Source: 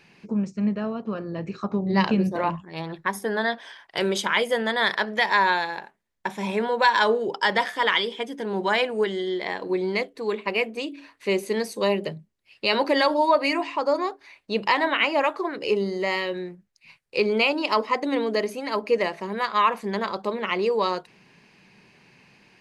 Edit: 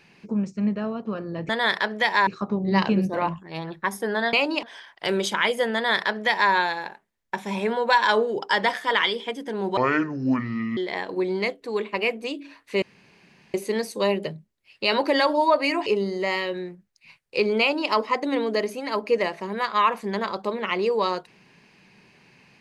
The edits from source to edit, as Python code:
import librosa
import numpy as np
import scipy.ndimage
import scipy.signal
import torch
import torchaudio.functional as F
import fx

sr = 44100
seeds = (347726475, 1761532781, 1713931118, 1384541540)

y = fx.edit(x, sr, fx.duplicate(start_s=4.66, length_s=0.78, to_s=1.49),
    fx.speed_span(start_s=8.69, length_s=0.61, speed=0.61),
    fx.insert_room_tone(at_s=11.35, length_s=0.72),
    fx.cut(start_s=13.67, length_s=1.99),
    fx.duplicate(start_s=17.4, length_s=0.3, to_s=3.55), tone=tone)